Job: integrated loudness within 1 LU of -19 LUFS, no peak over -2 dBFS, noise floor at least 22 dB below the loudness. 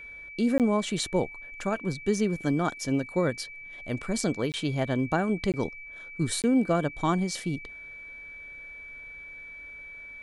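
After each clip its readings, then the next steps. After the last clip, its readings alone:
dropouts 4; longest dropout 18 ms; steady tone 2300 Hz; tone level -41 dBFS; loudness -28.5 LUFS; peak -11.5 dBFS; loudness target -19.0 LUFS
-> interpolate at 0.58/4.52/5.52/6.42, 18 ms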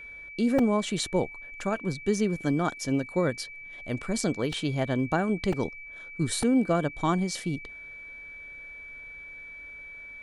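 dropouts 0; steady tone 2300 Hz; tone level -41 dBFS
-> notch 2300 Hz, Q 30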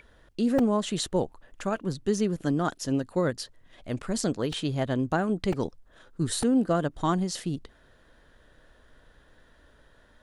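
steady tone none; loudness -28.5 LUFS; peak -12.0 dBFS; loudness target -19.0 LUFS
-> gain +9.5 dB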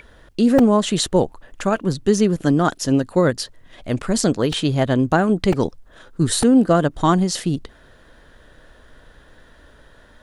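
loudness -19.0 LUFS; peak -2.5 dBFS; noise floor -50 dBFS

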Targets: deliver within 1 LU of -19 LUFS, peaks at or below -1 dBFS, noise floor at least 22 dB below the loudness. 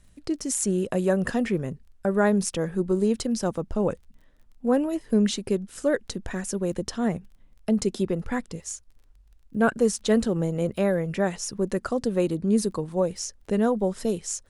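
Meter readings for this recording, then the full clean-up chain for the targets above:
ticks 20/s; loudness -26.0 LUFS; peak -8.5 dBFS; loudness target -19.0 LUFS
-> de-click; gain +7 dB

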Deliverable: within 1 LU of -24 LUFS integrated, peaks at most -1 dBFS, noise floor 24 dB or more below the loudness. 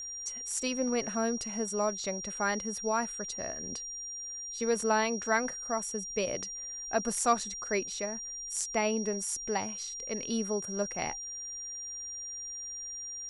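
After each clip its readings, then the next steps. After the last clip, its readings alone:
ticks 45/s; steady tone 5700 Hz; tone level -38 dBFS; loudness -32.5 LUFS; peak -14.0 dBFS; loudness target -24.0 LUFS
-> de-click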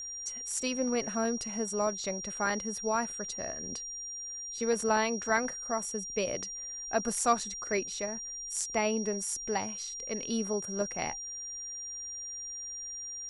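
ticks 0.15/s; steady tone 5700 Hz; tone level -38 dBFS
-> notch 5700 Hz, Q 30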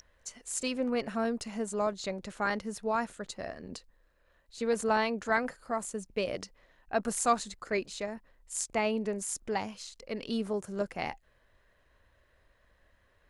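steady tone none; loudness -33.0 LUFS; peak -14.0 dBFS; loudness target -24.0 LUFS
-> gain +9 dB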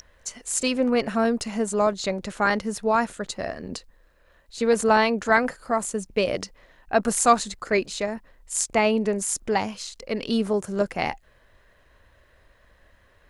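loudness -24.0 LUFS; peak -5.0 dBFS; noise floor -59 dBFS

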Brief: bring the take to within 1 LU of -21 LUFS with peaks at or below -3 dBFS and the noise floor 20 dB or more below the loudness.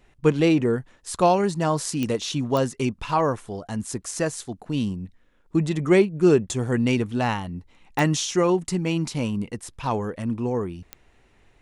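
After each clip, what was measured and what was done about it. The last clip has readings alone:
clicks 4; loudness -24.0 LUFS; peak -5.0 dBFS; loudness target -21.0 LUFS
-> de-click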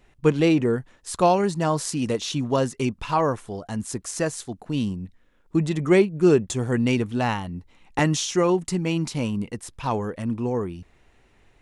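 clicks 0; loudness -24.0 LUFS; peak -5.0 dBFS; loudness target -21.0 LUFS
-> gain +3 dB; limiter -3 dBFS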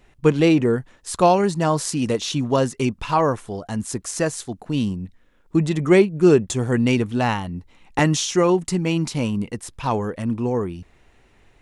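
loudness -21.0 LUFS; peak -3.0 dBFS; noise floor -57 dBFS

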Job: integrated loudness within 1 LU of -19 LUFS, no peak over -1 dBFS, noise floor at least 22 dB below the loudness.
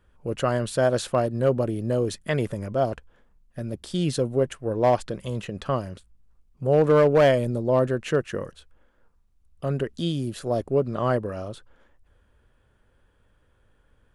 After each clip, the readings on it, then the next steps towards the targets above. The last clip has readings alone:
clipped 0.4%; flat tops at -12.0 dBFS; loudness -24.5 LUFS; peak -12.0 dBFS; loudness target -19.0 LUFS
-> clip repair -12 dBFS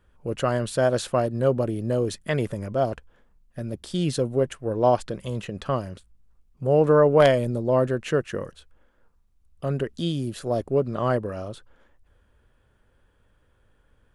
clipped 0.0%; loudness -24.5 LUFS; peak -3.0 dBFS; loudness target -19.0 LUFS
-> gain +5.5 dB; limiter -1 dBFS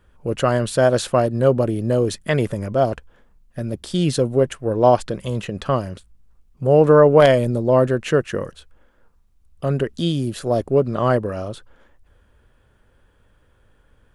loudness -19.0 LUFS; peak -1.0 dBFS; noise floor -59 dBFS

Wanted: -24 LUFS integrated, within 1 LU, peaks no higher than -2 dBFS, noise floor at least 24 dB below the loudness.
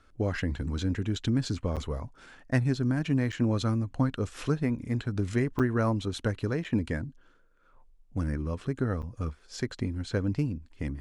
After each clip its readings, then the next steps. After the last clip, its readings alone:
dropouts 5; longest dropout 7.3 ms; loudness -30.5 LUFS; peak -11.0 dBFS; loudness target -24.0 LUFS
-> interpolate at 1.76/3.32/5.59/6.64/9.02, 7.3 ms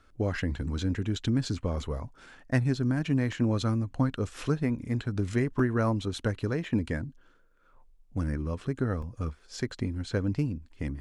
dropouts 0; loudness -30.5 LUFS; peak -11.0 dBFS; loudness target -24.0 LUFS
-> gain +6.5 dB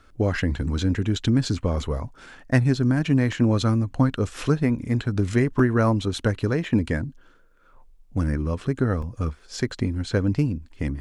loudness -24.0 LUFS; peak -4.5 dBFS; noise floor -54 dBFS

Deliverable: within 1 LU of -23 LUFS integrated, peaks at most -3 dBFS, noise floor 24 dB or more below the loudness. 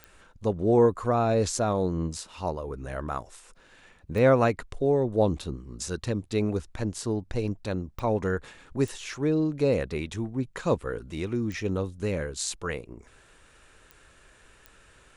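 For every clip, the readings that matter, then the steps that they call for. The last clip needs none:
clicks 7; loudness -28.0 LUFS; peak -10.0 dBFS; loudness target -23.0 LUFS
-> de-click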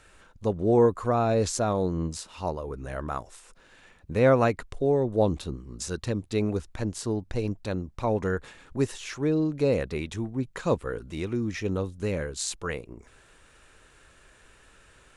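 clicks 0; loudness -28.0 LUFS; peak -10.0 dBFS; loudness target -23.0 LUFS
-> gain +5 dB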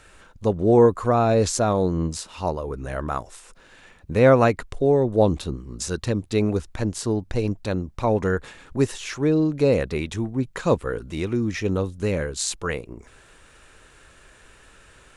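loudness -23.0 LUFS; peak -5.0 dBFS; noise floor -52 dBFS

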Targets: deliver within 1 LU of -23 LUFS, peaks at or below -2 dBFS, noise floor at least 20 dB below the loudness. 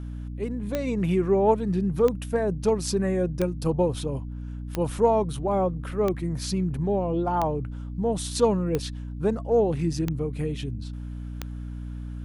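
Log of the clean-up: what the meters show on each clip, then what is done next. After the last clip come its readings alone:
clicks 9; hum 60 Hz; harmonics up to 300 Hz; hum level -32 dBFS; loudness -26.0 LUFS; peak -8.5 dBFS; loudness target -23.0 LUFS
-> de-click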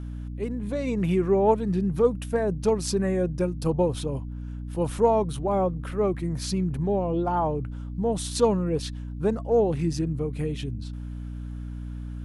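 clicks 0; hum 60 Hz; harmonics up to 300 Hz; hum level -32 dBFS
-> notches 60/120/180/240/300 Hz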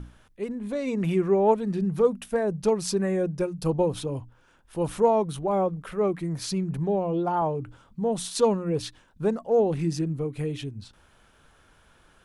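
hum none; loudness -26.5 LUFS; peak -9.0 dBFS; loudness target -23.0 LUFS
-> gain +3.5 dB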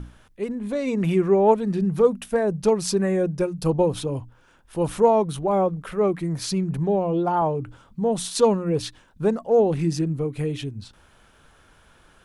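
loudness -23.0 LUFS; peak -5.5 dBFS; noise floor -56 dBFS

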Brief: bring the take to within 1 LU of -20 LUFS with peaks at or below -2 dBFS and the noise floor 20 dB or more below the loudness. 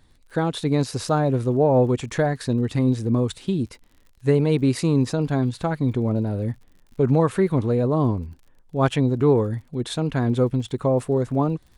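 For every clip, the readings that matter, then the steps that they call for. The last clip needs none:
ticks 54/s; loudness -22.5 LUFS; peak -7.0 dBFS; loudness target -20.0 LUFS
-> de-click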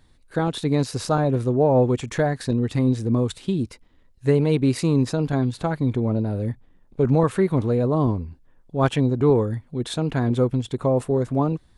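ticks 0.17/s; loudness -22.5 LUFS; peak -7.0 dBFS; loudness target -20.0 LUFS
-> gain +2.5 dB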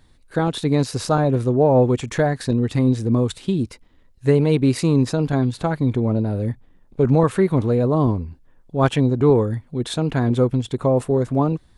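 loudness -20.0 LUFS; peak -4.5 dBFS; noise floor -54 dBFS

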